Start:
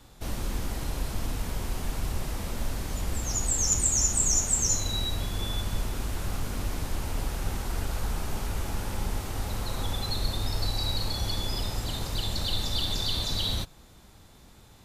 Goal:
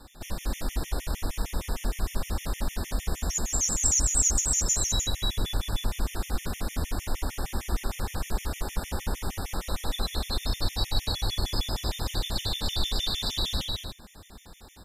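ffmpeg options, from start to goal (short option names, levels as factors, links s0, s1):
-filter_complex "[0:a]equalizer=f=120:w=4.3:g=-12,asplit=2[s0][s1];[s1]acompressor=threshold=0.0126:ratio=6,volume=0.891[s2];[s0][s2]amix=inputs=2:normalize=0,aecho=1:1:204.1|282.8:0.562|0.501,acrusher=bits=11:mix=0:aa=0.000001,afftfilt=real='re*gt(sin(2*PI*6.5*pts/sr)*(1-2*mod(floor(b*sr/1024/1800),2)),0)':imag='im*gt(sin(2*PI*6.5*pts/sr)*(1-2*mod(floor(b*sr/1024/1800),2)),0)':win_size=1024:overlap=0.75"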